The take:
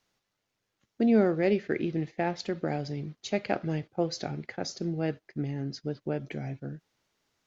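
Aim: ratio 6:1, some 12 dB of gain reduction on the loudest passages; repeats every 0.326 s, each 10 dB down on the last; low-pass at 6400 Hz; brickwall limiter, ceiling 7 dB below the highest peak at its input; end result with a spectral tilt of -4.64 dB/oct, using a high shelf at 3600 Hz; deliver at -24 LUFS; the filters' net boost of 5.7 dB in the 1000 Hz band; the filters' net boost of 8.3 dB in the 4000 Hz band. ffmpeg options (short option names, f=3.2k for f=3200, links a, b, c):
-af "lowpass=6.4k,equalizer=f=1k:t=o:g=8,highshelf=f=3.6k:g=7.5,equalizer=f=4k:t=o:g=5.5,acompressor=threshold=-30dB:ratio=6,alimiter=limit=-24dB:level=0:latency=1,aecho=1:1:326|652|978|1304:0.316|0.101|0.0324|0.0104,volume=12.5dB"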